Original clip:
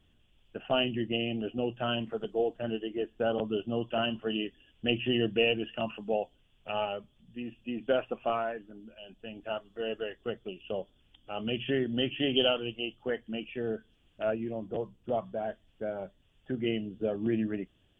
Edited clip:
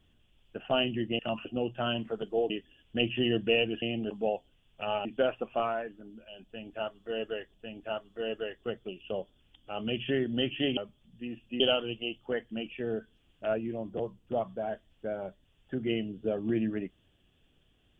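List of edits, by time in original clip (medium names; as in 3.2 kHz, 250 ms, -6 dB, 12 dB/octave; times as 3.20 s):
1.19–1.47 s: swap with 5.71–5.97 s
2.52–4.39 s: delete
6.92–7.75 s: move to 12.37 s
9.14–10.24 s: loop, 2 plays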